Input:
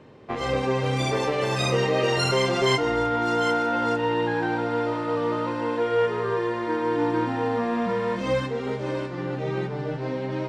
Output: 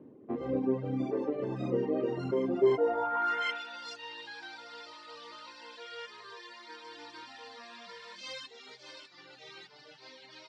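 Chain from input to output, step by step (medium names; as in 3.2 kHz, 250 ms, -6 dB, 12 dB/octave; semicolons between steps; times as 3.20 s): reverb removal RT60 1.1 s; band-pass sweep 280 Hz -> 4.6 kHz, 2.56–3.77 s; trim +3 dB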